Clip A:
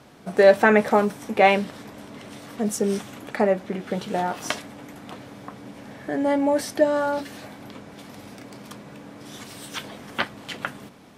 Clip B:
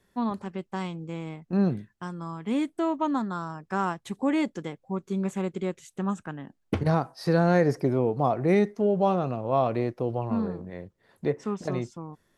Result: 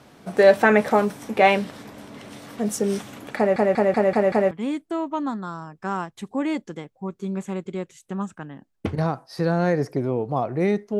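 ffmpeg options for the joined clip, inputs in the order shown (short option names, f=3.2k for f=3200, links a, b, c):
-filter_complex "[0:a]apad=whole_dur=10.99,atrim=end=10.99,asplit=6[a][b][c][d][e][f];[a]atrim=end=3.562[g];[b]atrim=start=3.368:end=3.562[h];[c]atrim=start=3.368:end=3.562[i];[d]atrim=start=3.368:end=3.562[j];[e]atrim=start=3.368:end=3.562[k];[f]atrim=start=3.368:end=3.562[l];[1:a]atrim=start=2.388:end=8.87[m];[g][h]acrossfade=d=0.004:c1=hsin:c2=hsin[n];[n][i]acrossfade=d=0.004:c1=hsin:c2=hsin[o];[o][j]acrossfade=d=0.004:c1=hsin:c2=hsin[p];[p][k]acrossfade=d=0.004:c1=hsin:c2=hsin[q];[q][l]acrossfade=d=0.004:c1=hsin:c2=hsin[r];[r][m]acrossfade=d=0.004:c1=hsin:c2=hsin"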